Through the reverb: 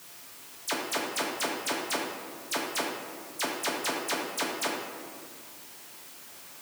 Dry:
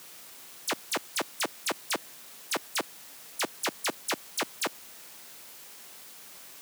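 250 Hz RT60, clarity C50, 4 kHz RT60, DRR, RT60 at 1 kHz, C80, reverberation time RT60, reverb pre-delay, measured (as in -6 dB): 2.4 s, 1.5 dB, 1.0 s, -3.0 dB, 1.9 s, 3.5 dB, 2.0 s, 7 ms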